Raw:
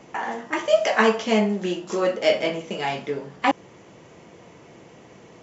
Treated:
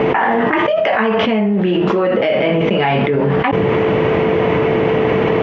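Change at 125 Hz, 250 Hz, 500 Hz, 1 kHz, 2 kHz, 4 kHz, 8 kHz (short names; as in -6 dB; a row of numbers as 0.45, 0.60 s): +18.0 dB, +11.5 dB, +10.0 dB, +9.5 dB, +8.5 dB, +5.5 dB, n/a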